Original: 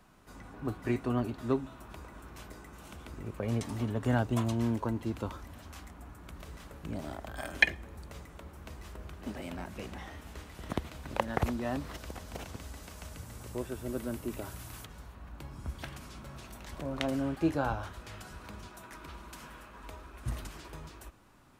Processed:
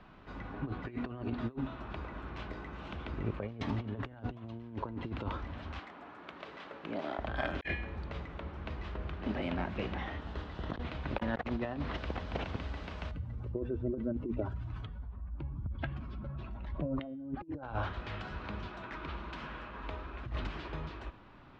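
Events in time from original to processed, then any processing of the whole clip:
5.79–7.19 HPF 340 Hz
10.18–10.83 bell 2300 Hz -8.5 dB 0.46 oct
13.11–17.63 spectral contrast raised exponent 1.8
whole clip: LPF 3700 Hz 24 dB/oct; de-hum 242.5 Hz, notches 37; negative-ratio compressor -37 dBFS, ratio -0.5; gain +2 dB

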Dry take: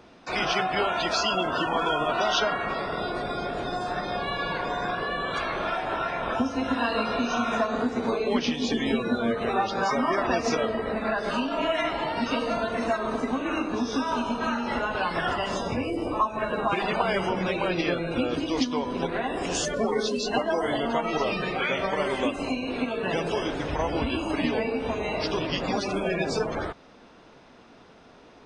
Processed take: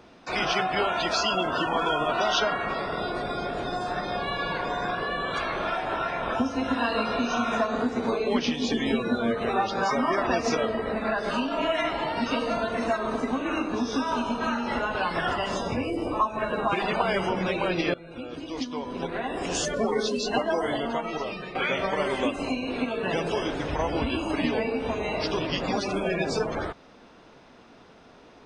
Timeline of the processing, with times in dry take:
17.94–19.65 fade in, from -17.5 dB
20.54–21.55 fade out, to -10 dB

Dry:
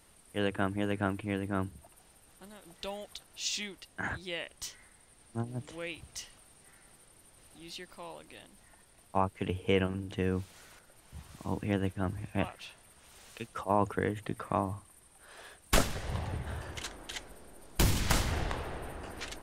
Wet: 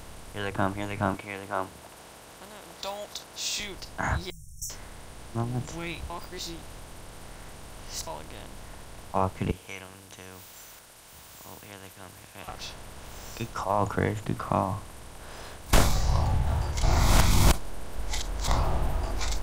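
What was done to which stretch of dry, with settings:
1.14–3.6 HPF 380 Hz
4.3–4.7 brick-wall FIR band-stop 160–5400 Hz
6.1–8.07 reverse
9.51–12.48 differentiator
16.83–18.48 reverse
whole clip: per-bin compression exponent 0.4; spectral noise reduction 11 dB; low shelf 120 Hz +6 dB

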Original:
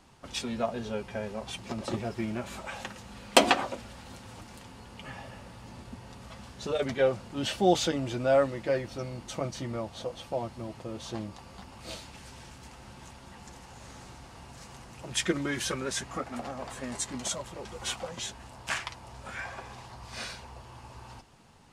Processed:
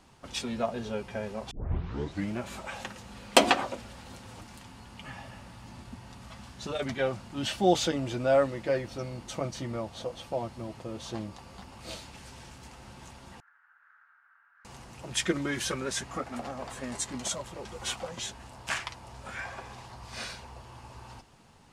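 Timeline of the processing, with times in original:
1.51 tape start 0.80 s
4.46–7.64 bell 470 Hz -7.5 dB 0.53 oct
13.4–14.65 Butterworth band-pass 1500 Hz, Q 3.9

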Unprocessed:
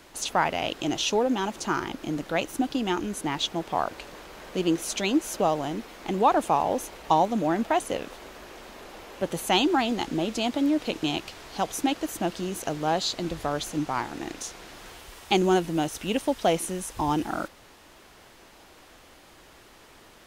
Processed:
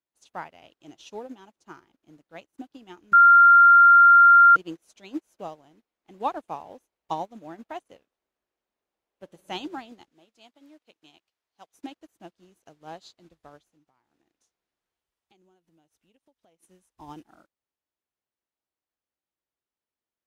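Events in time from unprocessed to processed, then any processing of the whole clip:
3.13–4.56 bleep 1390 Hz -9.5 dBFS
8.98–9.38 reverb throw, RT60 2.3 s, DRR 5.5 dB
10.11–11.74 low shelf 450 Hz -9.5 dB
13.58–16.63 compressor 5:1, threshold -31 dBFS
whole clip: HPF 43 Hz; upward expander 2.5:1, over -42 dBFS

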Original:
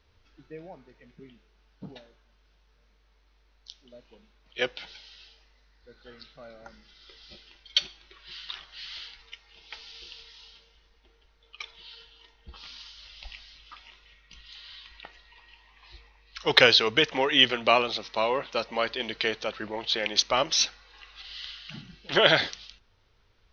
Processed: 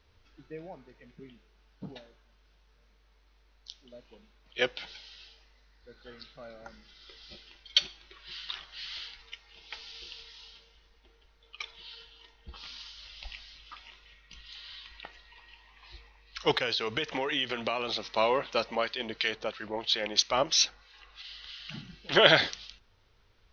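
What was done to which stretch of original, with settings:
16.51–18.04 compressor 5:1, threshold -27 dBFS
18.75–21.6 harmonic tremolo 3 Hz, crossover 1400 Hz

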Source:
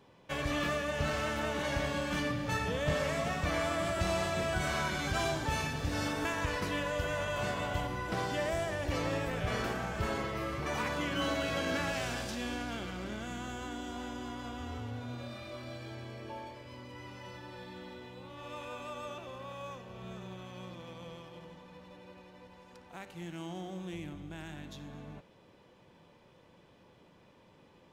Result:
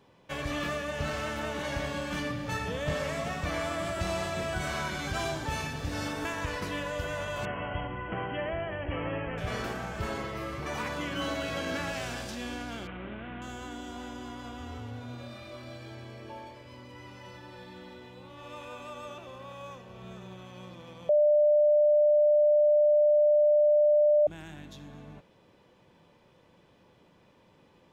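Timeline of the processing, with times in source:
7.45–9.38 brick-wall FIR low-pass 3300 Hz
12.87–13.42 CVSD 16 kbps
21.09–24.27 bleep 596 Hz -18.5 dBFS

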